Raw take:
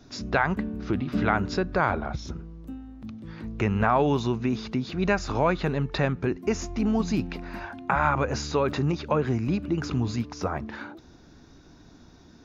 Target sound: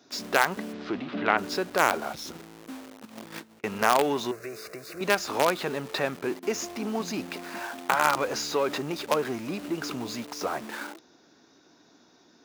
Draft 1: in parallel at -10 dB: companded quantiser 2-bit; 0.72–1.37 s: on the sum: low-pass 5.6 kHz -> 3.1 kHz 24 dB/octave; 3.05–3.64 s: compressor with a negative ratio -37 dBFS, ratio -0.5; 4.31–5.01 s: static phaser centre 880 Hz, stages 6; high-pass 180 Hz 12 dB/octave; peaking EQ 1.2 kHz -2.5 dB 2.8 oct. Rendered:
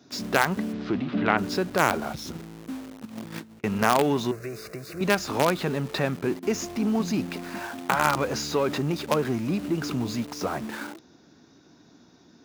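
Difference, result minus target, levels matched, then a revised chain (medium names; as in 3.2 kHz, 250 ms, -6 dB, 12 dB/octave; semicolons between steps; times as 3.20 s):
250 Hz band +4.5 dB
in parallel at -10 dB: companded quantiser 2-bit; 0.72–1.37 s: on the sum: low-pass 5.6 kHz -> 3.1 kHz 24 dB/octave; 3.05–3.64 s: compressor with a negative ratio -37 dBFS, ratio -0.5; 4.31–5.01 s: static phaser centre 880 Hz, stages 6; high-pass 370 Hz 12 dB/octave; peaking EQ 1.2 kHz -2.5 dB 2.8 oct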